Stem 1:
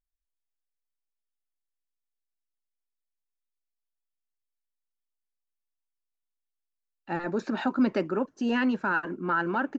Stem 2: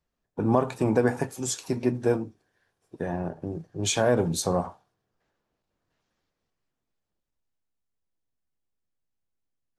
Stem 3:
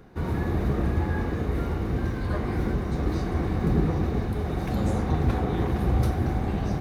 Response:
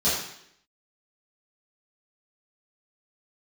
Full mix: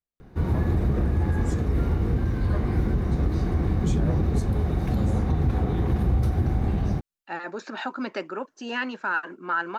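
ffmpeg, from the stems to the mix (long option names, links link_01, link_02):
-filter_complex "[0:a]highpass=frequency=940:poles=1,adelay=200,volume=3dB[link_01];[1:a]volume=-16.5dB[link_02];[2:a]lowshelf=frequency=220:gain=8.5,alimiter=limit=-12.5dB:level=0:latency=1:release=92,adelay=200,volume=-2dB[link_03];[link_01][link_02][link_03]amix=inputs=3:normalize=0"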